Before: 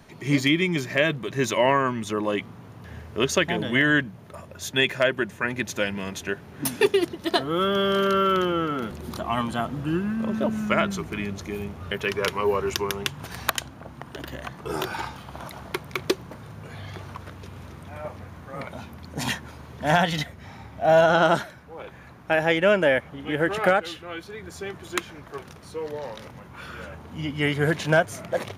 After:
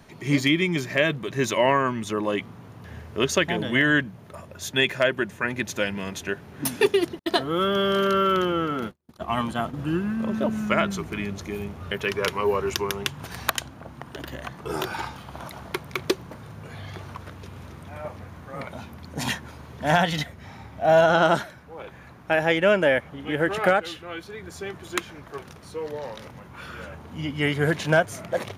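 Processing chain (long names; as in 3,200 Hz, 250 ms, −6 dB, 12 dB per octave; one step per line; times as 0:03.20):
0:07.19–0:09.79: noise gate −30 dBFS, range −47 dB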